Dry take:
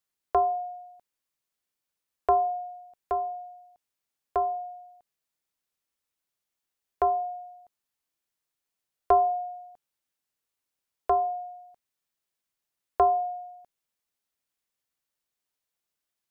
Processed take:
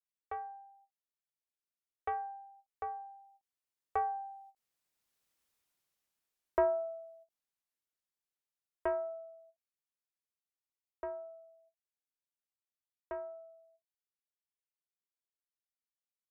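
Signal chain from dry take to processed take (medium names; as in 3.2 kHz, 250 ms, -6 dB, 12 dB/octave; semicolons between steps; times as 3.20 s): self-modulated delay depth 0.11 ms; Doppler pass-by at 5.38 s, 32 m/s, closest 14 m; endings held to a fixed fall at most 450 dB/s; trim +4.5 dB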